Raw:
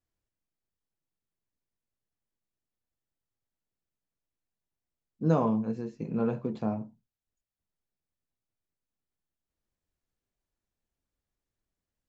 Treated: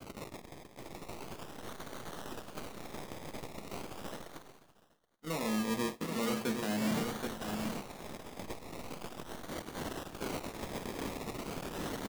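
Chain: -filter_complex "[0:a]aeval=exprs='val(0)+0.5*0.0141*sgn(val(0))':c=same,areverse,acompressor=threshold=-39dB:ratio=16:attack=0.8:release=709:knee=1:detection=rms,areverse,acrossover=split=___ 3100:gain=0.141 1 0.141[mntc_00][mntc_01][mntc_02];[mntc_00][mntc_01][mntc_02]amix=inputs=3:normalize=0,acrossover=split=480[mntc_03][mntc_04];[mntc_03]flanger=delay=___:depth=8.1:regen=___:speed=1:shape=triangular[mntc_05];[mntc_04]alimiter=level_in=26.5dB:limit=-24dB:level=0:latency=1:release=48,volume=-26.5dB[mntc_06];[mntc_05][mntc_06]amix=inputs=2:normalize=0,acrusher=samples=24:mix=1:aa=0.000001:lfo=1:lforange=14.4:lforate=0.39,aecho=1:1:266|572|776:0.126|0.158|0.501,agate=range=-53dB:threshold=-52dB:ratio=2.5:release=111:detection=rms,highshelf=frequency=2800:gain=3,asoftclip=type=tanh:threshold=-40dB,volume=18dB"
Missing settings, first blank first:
170, 5.9, -86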